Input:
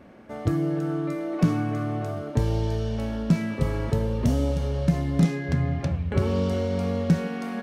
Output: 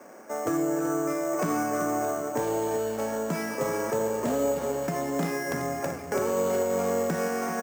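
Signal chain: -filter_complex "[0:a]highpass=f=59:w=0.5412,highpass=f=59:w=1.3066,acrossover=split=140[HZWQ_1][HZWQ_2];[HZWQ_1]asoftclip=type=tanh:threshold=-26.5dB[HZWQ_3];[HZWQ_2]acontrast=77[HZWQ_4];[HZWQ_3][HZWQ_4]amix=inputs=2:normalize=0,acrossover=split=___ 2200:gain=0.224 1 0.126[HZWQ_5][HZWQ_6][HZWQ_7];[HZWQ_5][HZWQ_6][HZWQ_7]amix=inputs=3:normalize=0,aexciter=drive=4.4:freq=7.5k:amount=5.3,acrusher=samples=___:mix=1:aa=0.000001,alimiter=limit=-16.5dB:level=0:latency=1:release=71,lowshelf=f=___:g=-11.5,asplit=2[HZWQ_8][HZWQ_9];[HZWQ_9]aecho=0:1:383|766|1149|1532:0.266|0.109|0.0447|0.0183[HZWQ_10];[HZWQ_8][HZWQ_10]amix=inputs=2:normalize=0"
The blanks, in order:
350, 6, 130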